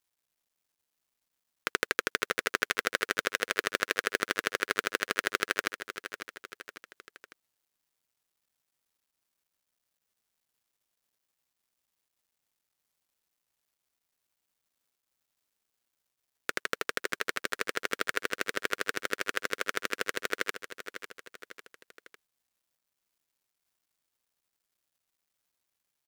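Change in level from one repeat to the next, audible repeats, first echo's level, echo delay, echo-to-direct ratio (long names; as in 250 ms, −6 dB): −6.0 dB, 3, −11.0 dB, 550 ms, −10.0 dB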